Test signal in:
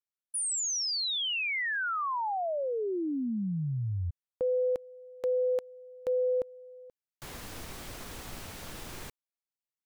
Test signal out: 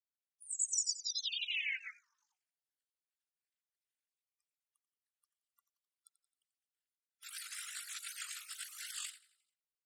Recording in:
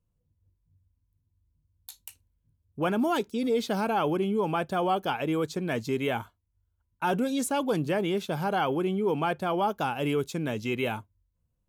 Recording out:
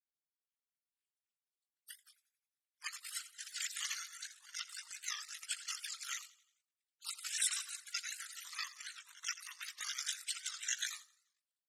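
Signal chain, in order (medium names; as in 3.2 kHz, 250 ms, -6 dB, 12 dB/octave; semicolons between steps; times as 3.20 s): random holes in the spectrogram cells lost 49%; resonant low-pass 6.3 kHz, resonance Q 7.9; ring modulator 25 Hz; steep high-pass 1.5 kHz 72 dB/octave; level rider gain up to 10 dB; on a send: feedback delay 88 ms, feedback 50%, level -15 dB; on the sum: gate -42 dBFS, range -6 dB; spectral gate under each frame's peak -20 dB weak; warped record 78 rpm, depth 160 cents; trim +7 dB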